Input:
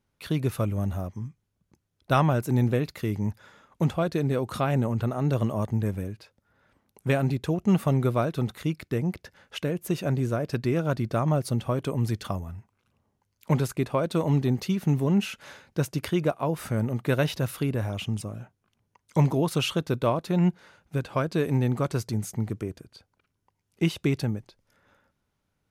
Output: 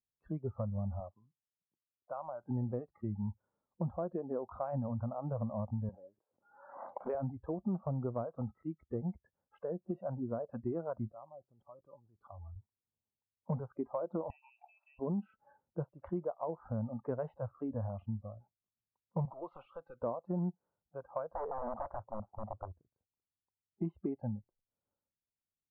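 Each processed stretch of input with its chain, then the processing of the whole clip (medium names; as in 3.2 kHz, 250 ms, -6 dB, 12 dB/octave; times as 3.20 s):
1.00–2.44 s: high-pass 100 Hz + bass shelf 150 Hz -9.5 dB + compression 10:1, threshold -26 dBFS
5.89–7.15 s: high-pass 330 Hz + swell ahead of each attack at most 40 dB/s
11.10–12.56 s: tone controls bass -2 dB, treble +10 dB + level held to a coarse grid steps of 20 dB
14.30–14.99 s: frequency inversion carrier 2.8 kHz + brick-wall FIR high-pass 570 Hz + compression 2:1, threshold -30 dBFS
19.25–20.02 s: frequency weighting D + compression 4:1, threshold -26 dBFS + hard clipper -24 dBFS
21.34–22.68 s: integer overflow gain 21.5 dB + overdrive pedal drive 16 dB, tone 1 kHz, clips at -21.5 dBFS
whole clip: low-pass 1 kHz 24 dB/octave; spectral noise reduction 22 dB; compression 4:1, threshold -28 dBFS; trim -5 dB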